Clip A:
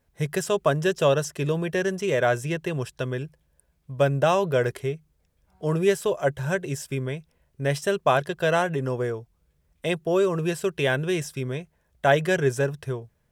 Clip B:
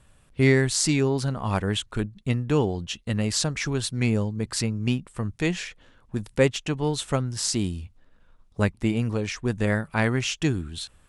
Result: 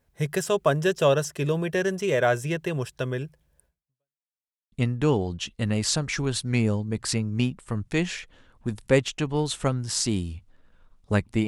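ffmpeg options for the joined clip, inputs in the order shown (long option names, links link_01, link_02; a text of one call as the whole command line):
ffmpeg -i cue0.wav -i cue1.wav -filter_complex "[0:a]apad=whole_dur=11.47,atrim=end=11.47,asplit=2[link_01][link_02];[link_01]atrim=end=4.21,asetpts=PTS-STARTPTS,afade=type=out:start_time=3.66:duration=0.55:curve=exp[link_03];[link_02]atrim=start=4.21:end=4.72,asetpts=PTS-STARTPTS,volume=0[link_04];[1:a]atrim=start=2.2:end=8.95,asetpts=PTS-STARTPTS,afade=type=in:duration=0.004:curve=hsin[link_05];[link_03][link_04][link_05]concat=n=3:v=0:a=1" out.wav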